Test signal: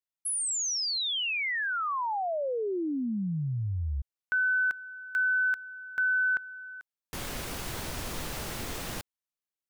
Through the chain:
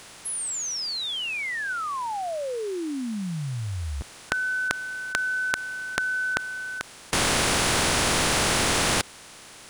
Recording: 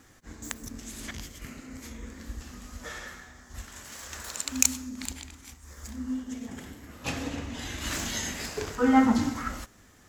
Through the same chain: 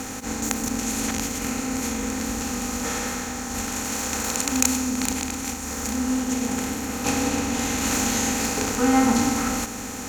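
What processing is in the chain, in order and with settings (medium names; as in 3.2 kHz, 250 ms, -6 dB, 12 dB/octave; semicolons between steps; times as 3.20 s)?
spectral levelling over time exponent 0.4; trim -1 dB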